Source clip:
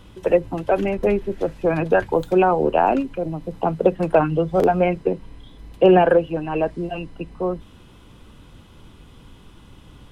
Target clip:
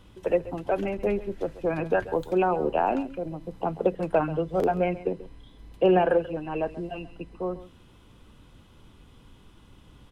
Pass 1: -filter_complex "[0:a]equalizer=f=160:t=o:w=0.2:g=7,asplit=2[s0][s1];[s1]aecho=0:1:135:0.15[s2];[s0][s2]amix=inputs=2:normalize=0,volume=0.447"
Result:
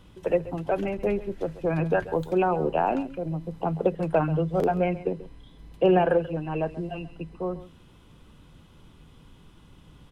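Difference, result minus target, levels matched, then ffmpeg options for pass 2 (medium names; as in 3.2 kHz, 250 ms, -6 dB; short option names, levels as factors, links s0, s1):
125 Hz band +5.0 dB
-filter_complex "[0:a]equalizer=f=160:t=o:w=0.2:g=-2,asplit=2[s0][s1];[s1]aecho=0:1:135:0.15[s2];[s0][s2]amix=inputs=2:normalize=0,volume=0.447"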